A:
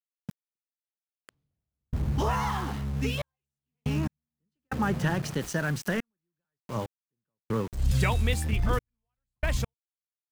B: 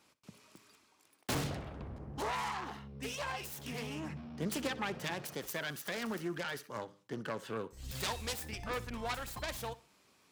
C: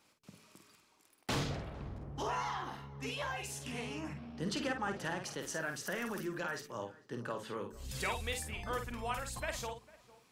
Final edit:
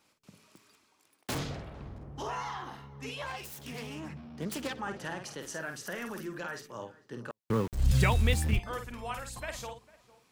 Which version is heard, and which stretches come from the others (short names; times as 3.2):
C
0.47–1.38 from B
3.26–4.81 from B
7.31–8.59 from A